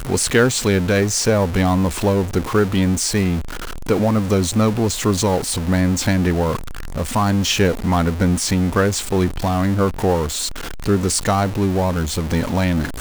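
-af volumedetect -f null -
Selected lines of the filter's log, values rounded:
mean_volume: -18.2 dB
max_volume: -2.3 dB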